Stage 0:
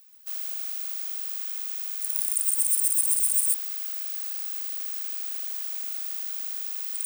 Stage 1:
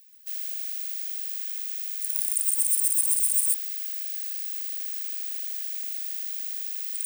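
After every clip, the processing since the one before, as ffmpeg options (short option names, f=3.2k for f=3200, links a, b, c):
-af "afftfilt=real='re*(1-between(b*sr/4096,660,1600))':imag='im*(1-between(b*sr/4096,660,1600))':win_size=4096:overlap=0.75"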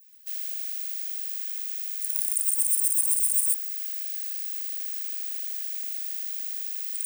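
-af "adynamicequalizer=threshold=0.00398:dfrequency=3400:dqfactor=1.1:tfrequency=3400:tqfactor=1.1:attack=5:release=100:ratio=0.375:range=3:mode=cutabove:tftype=bell"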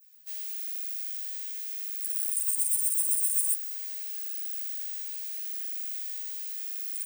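-filter_complex "[0:a]asplit=2[a][b];[b]adelay=11.5,afreqshift=-0.82[c];[a][c]amix=inputs=2:normalize=1"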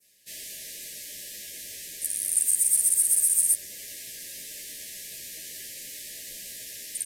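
-af "aresample=32000,aresample=44100,volume=7.5dB"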